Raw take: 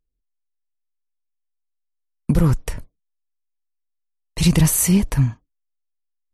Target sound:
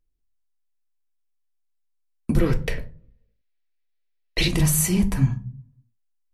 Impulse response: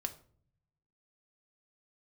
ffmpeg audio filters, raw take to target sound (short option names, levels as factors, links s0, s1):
-filter_complex "[0:a]asettb=1/sr,asplit=3[s0][s1][s2];[s0]atrim=end=2.394[s3];[s1]atrim=start=2.39:end=4.48,asetpts=PTS-STARTPTS,afade=t=in:d=0.004:c=qsin,afade=t=out:st=2.086:d=0.004:c=qsin,equalizer=f=125:t=o:w=1:g=-4,equalizer=f=500:t=o:w=1:g=10,equalizer=f=1000:t=o:w=1:g=-6,equalizer=f=2000:t=o:w=1:g=11,equalizer=f=4000:t=o:w=1:g=8,equalizer=f=8000:t=o:w=1:g=-10[s4];[s2]atrim=start=4.476[s5];[s3][s4]acrossfade=d=0.004:c1=hsin:c2=qsin[s6];[s6][s5]acrossfade=d=0.004:c1=qsin:c2=hsin,alimiter=limit=0.316:level=0:latency=1:release=425[s7];[1:a]atrim=start_sample=2205,asetrate=61740,aresample=44100[s8];[s7][s8]afir=irnorm=-1:irlink=0,volume=1.5"